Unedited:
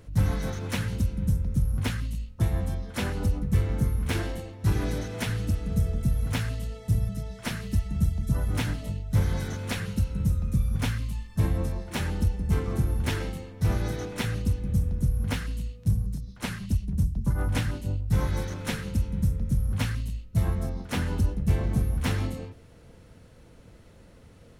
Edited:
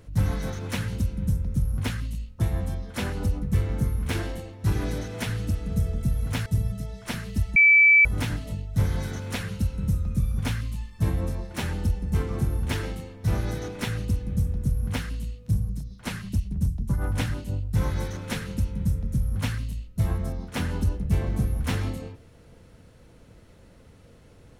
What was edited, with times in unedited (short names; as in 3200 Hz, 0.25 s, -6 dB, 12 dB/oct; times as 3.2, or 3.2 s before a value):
6.46–6.83 cut
7.93–8.42 bleep 2310 Hz -12 dBFS